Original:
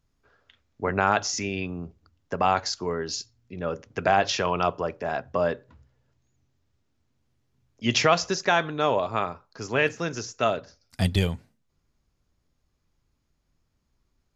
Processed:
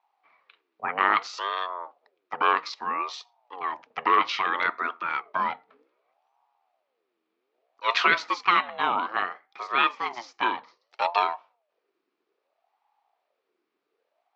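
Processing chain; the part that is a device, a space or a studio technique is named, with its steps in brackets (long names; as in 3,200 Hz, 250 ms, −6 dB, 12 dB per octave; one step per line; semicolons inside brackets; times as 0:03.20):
voice changer toy (ring modulator whose carrier an LFO sweeps 580 Hz, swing 45%, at 0.62 Hz; loudspeaker in its box 490–4,200 Hz, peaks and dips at 560 Hz −6 dB, 1,200 Hz +7 dB, 2,400 Hz +5 dB)
level +1.5 dB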